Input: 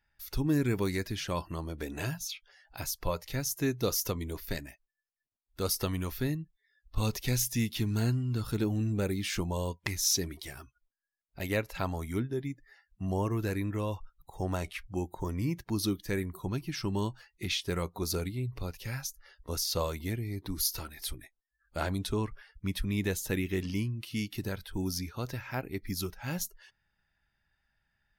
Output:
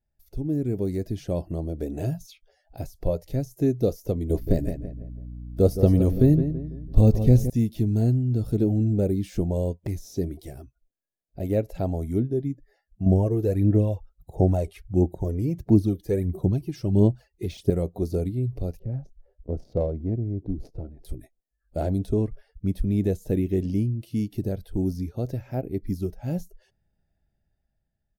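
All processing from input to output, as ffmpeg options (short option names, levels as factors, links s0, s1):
-filter_complex "[0:a]asettb=1/sr,asplit=3[s0][s1][s2];[s0]atrim=end=4.304[s3];[s1]atrim=start=4.3:end=7.5,asetpts=PTS-STARTPTS,afade=t=in:d=0.004:c=qsin,afade=t=out:st=3.196:d=0.004:c=qsin,aeval=exprs='val(0)+0.002*(sin(2*PI*60*n/s)+sin(2*PI*2*60*n/s)/2+sin(2*PI*3*60*n/s)/3+sin(2*PI*4*60*n/s)/4+sin(2*PI*5*60*n/s)/5)':c=same,asplit=2[s4][s5];[s5]adelay=166,lowpass=f=1700:p=1,volume=0.335,asplit=2[s6][s7];[s7]adelay=166,lowpass=f=1700:p=1,volume=0.41,asplit=2[s8][s9];[s9]adelay=166,lowpass=f=1700:p=1,volume=0.41,asplit=2[s10][s11];[s11]adelay=166,lowpass=f=1700:p=1,volume=0.41[s12];[s4][s6][s8][s10][s12]amix=inputs=5:normalize=0,atrim=end_sample=141120,acontrast=86[s13];[s2]atrim=start=7.496[s14];[s3][s13]acrossfade=d=0.004:c1=hsin:c2=qsin[s15];[s15][s14]acrossfade=d=0.004:c1=qsin:c2=hsin,asettb=1/sr,asplit=3[s16][s17][s18];[s16]atrim=end=13.064[s19];[s17]atrim=start=13.06:end=17.7,asetpts=PTS-STARTPTS,afade=t=in:d=0.004:c=qsin,afade=t=out:st=4.636:d=0.004:c=qsin,highpass=43,aphaser=in_gain=1:out_gain=1:delay=2.5:decay=0.57:speed=1.5:type=sinusoidal[s20];[s18]atrim=start=17.696[s21];[s19][s20]acrossfade=d=0.004:c1=hsin:c2=qsin[s22];[s22][s21]acrossfade=d=0.004:c1=qsin:c2=hsin,asettb=1/sr,asplit=3[s23][s24][s25];[s23]atrim=end=18.794[s26];[s24]atrim=start=18.79:end=21.05,asetpts=PTS-STARTPTS,afade=t=in:d=0.004:c=qsin,afade=t=out:st=2.256:d=0.004:c=qsin,highshelf=f=4700:g=8.5,adynamicsmooth=sensitivity=1:basefreq=620[s27];[s25]atrim=start=21.046[s28];[s26][s27]acrossfade=d=0.004:c1=hsin:c2=qsin[s29];[s29][s28]acrossfade=d=0.004:c1=qsin:c2=hsin,deesser=0.85,firequalizer=gain_entry='entry(670,0);entry(1000,-21);entry(7800,-12)':delay=0.05:min_phase=1,dynaudnorm=f=140:g=13:m=2.51"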